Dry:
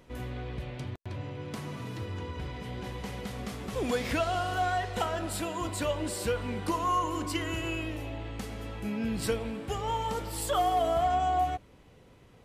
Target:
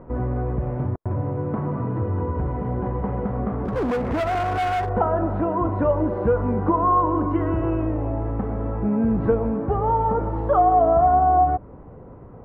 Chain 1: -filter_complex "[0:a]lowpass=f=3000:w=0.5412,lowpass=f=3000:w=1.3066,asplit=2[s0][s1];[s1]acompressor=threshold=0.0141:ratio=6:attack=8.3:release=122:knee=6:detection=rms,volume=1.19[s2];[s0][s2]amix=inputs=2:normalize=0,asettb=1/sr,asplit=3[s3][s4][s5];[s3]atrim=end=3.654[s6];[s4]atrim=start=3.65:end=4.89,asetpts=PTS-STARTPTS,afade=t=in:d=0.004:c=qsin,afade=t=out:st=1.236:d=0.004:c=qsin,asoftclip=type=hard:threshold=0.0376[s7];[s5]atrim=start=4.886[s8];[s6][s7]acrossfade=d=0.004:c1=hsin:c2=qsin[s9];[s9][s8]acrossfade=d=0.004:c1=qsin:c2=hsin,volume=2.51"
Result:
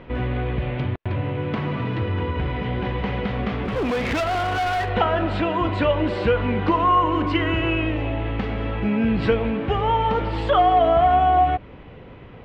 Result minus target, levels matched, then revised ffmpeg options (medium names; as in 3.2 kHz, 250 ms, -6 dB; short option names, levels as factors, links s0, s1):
4 kHz band +15.0 dB
-filter_complex "[0:a]lowpass=f=1200:w=0.5412,lowpass=f=1200:w=1.3066,asplit=2[s0][s1];[s1]acompressor=threshold=0.0141:ratio=6:attack=8.3:release=122:knee=6:detection=rms,volume=1.19[s2];[s0][s2]amix=inputs=2:normalize=0,asettb=1/sr,asplit=3[s3][s4][s5];[s3]atrim=end=3.654[s6];[s4]atrim=start=3.65:end=4.89,asetpts=PTS-STARTPTS,afade=t=in:d=0.004:c=qsin,afade=t=out:st=1.236:d=0.004:c=qsin,asoftclip=type=hard:threshold=0.0376[s7];[s5]atrim=start=4.886[s8];[s6][s7]acrossfade=d=0.004:c1=hsin:c2=qsin[s9];[s9][s8]acrossfade=d=0.004:c1=qsin:c2=hsin,volume=2.51"